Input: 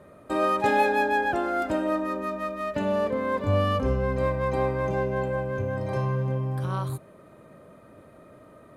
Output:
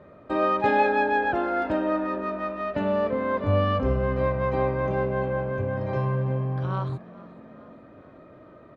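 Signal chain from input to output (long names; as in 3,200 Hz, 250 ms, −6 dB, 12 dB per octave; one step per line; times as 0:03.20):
Bessel low-pass filter 3,300 Hz, order 4
on a send: echo with shifted repeats 430 ms, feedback 61%, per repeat +46 Hz, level −21 dB
on the sum: level +1 dB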